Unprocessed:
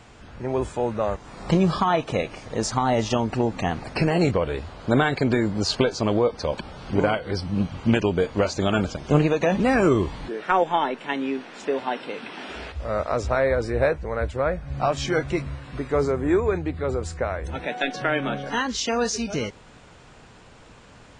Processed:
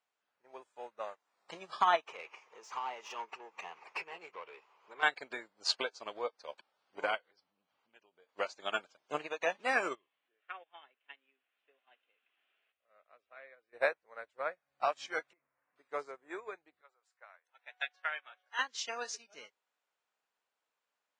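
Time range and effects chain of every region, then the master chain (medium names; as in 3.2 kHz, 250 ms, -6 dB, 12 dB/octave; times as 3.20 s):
2.06–5.03 s: rippled EQ curve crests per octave 0.76, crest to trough 10 dB + compression 4:1, threshold -24 dBFS + overdrive pedal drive 16 dB, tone 1.8 kHz, clips at -16 dBFS
7.21–8.29 s: low-pass 6.2 kHz + compression 2.5:1, threshold -30 dBFS
9.95–13.73 s: four-pole ladder low-pass 3.4 kHz, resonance 50% + band-stop 910 Hz, Q 6.3
15.33–15.76 s: inverse Chebyshev low-pass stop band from 4.3 kHz + compression 16:1, threshold -30 dBFS
16.81–18.59 s: high-pass 960 Hz + treble shelf 3.2 kHz -5.5 dB
whole clip: high-pass 690 Hz 12 dB/octave; dynamic bell 2.3 kHz, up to +3 dB, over -38 dBFS, Q 0.85; upward expansion 2.5:1, over -41 dBFS; trim -3 dB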